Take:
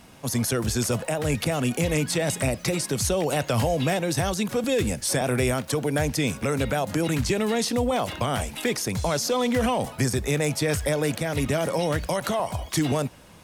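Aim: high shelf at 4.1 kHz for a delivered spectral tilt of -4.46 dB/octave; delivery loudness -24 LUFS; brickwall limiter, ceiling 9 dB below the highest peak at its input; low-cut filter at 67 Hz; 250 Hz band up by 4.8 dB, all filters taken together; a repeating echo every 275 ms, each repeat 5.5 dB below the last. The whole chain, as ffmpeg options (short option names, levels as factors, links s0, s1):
-af "highpass=67,equalizer=f=250:t=o:g=6,highshelf=f=4100:g=5,alimiter=limit=0.15:level=0:latency=1,aecho=1:1:275|550|825|1100|1375|1650|1925:0.531|0.281|0.149|0.079|0.0419|0.0222|0.0118"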